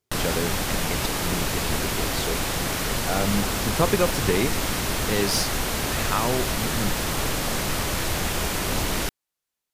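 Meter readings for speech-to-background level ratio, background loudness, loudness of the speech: -3.0 dB, -25.5 LUFS, -28.5 LUFS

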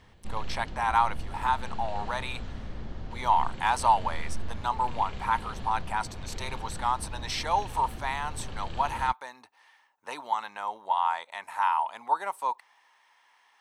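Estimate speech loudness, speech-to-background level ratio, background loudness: -30.0 LUFS, 11.5 dB, -41.5 LUFS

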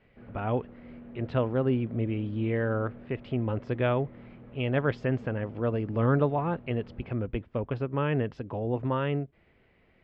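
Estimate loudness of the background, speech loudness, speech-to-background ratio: -48.5 LUFS, -30.0 LUFS, 18.5 dB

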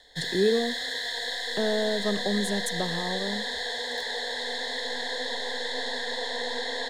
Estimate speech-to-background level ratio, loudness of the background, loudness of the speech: 0.5 dB, -30.0 LUFS, -29.5 LUFS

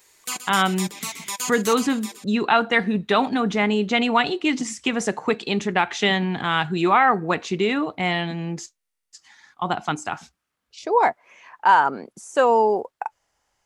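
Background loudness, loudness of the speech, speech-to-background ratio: -30.5 LUFS, -21.5 LUFS, 9.0 dB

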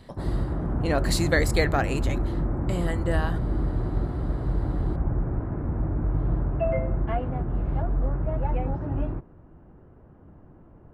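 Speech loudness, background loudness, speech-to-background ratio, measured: -28.0 LUFS, -28.5 LUFS, 0.5 dB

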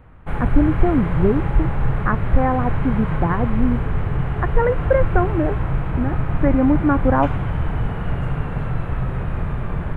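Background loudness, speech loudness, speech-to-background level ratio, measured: -24.0 LUFS, -21.5 LUFS, 2.5 dB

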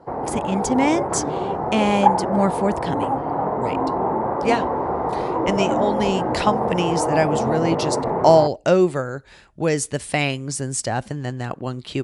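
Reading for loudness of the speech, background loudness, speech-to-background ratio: -22.5 LUFS, -23.0 LUFS, 0.5 dB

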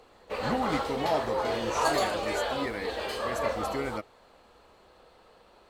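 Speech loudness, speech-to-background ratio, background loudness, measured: -35.5 LUFS, -4.5 dB, -31.0 LUFS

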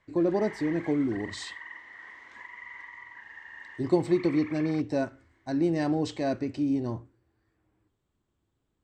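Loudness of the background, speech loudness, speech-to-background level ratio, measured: -44.0 LUFS, -28.5 LUFS, 15.5 dB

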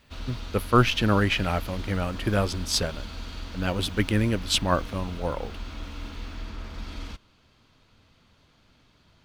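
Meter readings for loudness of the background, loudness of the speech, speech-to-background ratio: -39.0 LUFS, -26.0 LUFS, 13.0 dB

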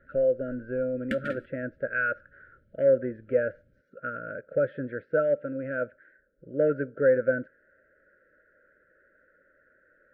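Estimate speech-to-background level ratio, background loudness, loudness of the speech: 9.0 dB, -37.5 LUFS, -28.5 LUFS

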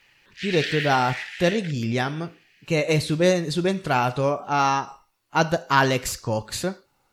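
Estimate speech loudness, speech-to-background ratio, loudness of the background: -23.5 LUFS, 7.5 dB, -31.0 LUFS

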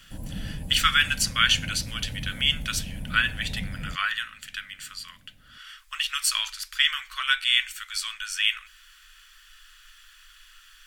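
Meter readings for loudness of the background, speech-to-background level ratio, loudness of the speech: -37.5 LUFS, 13.0 dB, -24.5 LUFS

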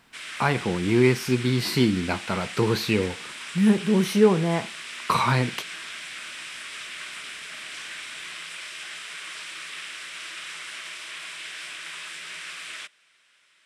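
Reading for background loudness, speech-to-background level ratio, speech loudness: -35.5 LUFS, 12.0 dB, -23.5 LUFS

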